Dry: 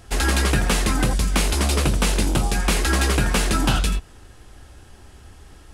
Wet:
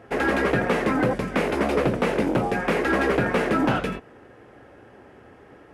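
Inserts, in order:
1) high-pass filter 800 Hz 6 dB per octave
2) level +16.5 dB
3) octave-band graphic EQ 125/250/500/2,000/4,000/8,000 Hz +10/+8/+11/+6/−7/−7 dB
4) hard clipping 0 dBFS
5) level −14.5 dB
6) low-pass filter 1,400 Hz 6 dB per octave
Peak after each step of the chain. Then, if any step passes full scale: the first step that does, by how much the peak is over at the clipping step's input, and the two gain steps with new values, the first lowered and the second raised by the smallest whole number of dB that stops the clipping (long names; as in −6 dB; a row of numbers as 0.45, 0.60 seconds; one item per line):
−10.0, +6.5, +10.0, 0.0, −14.5, −14.5 dBFS
step 2, 10.0 dB
step 2 +6.5 dB, step 5 −4.5 dB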